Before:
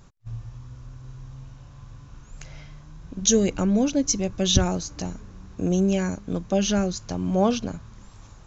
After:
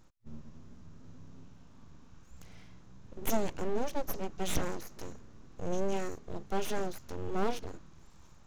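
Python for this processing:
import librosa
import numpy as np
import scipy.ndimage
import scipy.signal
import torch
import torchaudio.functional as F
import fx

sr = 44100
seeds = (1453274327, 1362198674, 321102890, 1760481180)

y = np.abs(x)
y = fx.hpss(y, sr, part='percussive', gain_db=-5)
y = F.gain(torch.from_numpy(y), -7.0).numpy()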